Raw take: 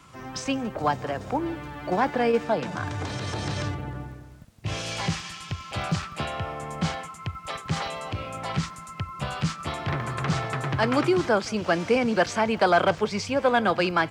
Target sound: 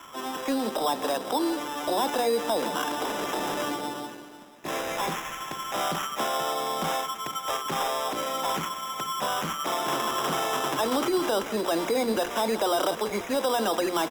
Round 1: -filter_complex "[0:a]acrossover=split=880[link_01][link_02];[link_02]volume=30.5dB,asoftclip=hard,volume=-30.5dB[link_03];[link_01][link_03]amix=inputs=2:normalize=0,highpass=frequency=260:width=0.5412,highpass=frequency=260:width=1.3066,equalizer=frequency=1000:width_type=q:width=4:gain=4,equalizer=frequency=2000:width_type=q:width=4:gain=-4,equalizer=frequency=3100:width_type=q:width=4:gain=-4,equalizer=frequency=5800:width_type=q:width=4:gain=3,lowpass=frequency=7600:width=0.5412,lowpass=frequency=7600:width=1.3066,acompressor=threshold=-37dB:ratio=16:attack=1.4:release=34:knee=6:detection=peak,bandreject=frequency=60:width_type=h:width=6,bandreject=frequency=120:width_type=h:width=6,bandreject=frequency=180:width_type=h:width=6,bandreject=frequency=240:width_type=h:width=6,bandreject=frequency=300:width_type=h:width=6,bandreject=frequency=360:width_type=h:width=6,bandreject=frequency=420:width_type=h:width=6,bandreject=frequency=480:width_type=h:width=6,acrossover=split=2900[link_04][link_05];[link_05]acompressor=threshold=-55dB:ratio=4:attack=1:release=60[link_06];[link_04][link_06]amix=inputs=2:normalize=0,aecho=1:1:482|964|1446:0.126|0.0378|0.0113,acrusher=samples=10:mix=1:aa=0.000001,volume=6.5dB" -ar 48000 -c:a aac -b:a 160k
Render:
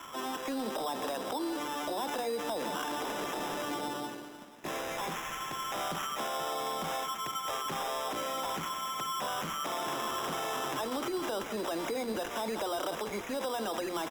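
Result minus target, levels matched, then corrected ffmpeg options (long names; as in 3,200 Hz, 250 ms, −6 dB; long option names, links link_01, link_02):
downward compressor: peak gain reduction +9.5 dB
-filter_complex "[0:a]acrossover=split=880[link_01][link_02];[link_02]volume=30.5dB,asoftclip=hard,volume=-30.5dB[link_03];[link_01][link_03]amix=inputs=2:normalize=0,highpass=frequency=260:width=0.5412,highpass=frequency=260:width=1.3066,equalizer=frequency=1000:width_type=q:width=4:gain=4,equalizer=frequency=2000:width_type=q:width=4:gain=-4,equalizer=frequency=3100:width_type=q:width=4:gain=-4,equalizer=frequency=5800:width_type=q:width=4:gain=3,lowpass=frequency=7600:width=0.5412,lowpass=frequency=7600:width=1.3066,acompressor=threshold=-27dB:ratio=16:attack=1.4:release=34:knee=6:detection=peak,bandreject=frequency=60:width_type=h:width=6,bandreject=frequency=120:width_type=h:width=6,bandreject=frequency=180:width_type=h:width=6,bandreject=frequency=240:width_type=h:width=6,bandreject=frequency=300:width_type=h:width=6,bandreject=frequency=360:width_type=h:width=6,bandreject=frequency=420:width_type=h:width=6,bandreject=frequency=480:width_type=h:width=6,acrossover=split=2900[link_04][link_05];[link_05]acompressor=threshold=-55dB:ratio=4:attack=1:release=60[link_06];[link_04][link_06]amix=inputs=2:normalize=0,aecho=1:1:482|964|1446:0.126|0.0378|0.0113,acrusher=samples=10:mix=1:aa=0.000001,volume=6.5dB" -ar 48000 -c:a aac -b:a 160k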